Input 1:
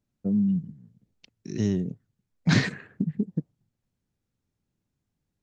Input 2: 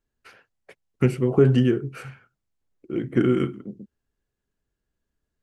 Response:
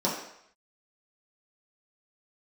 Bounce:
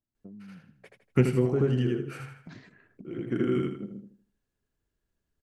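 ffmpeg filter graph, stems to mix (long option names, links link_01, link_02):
-filter_complex "[0:a]lowpass=frequency=3300:poles=1,aecho=1:1:3:0.33,acompressor=threshold=-32dB:ratio=16,volume=-11.5dB,asplit=2[link_01][link_02];[1:a]adelay=150,volume=-2dB,asplit=2[link_03][link_04];[link_04]volume=-7.5dB[link_05];[link_02]apad=whole_len=245750[link_06];[link_03][link_06]sidechaincompress=threshold=-54dB:ratio=10:attack=40:release=544[link_07];[link_05]aecho=0:1:80|160|240|320|400:1|0.33|0.109|0.0359|0.0119[link_08];[link_01][link_07][link_08]amix=inputs=3:normalize=0"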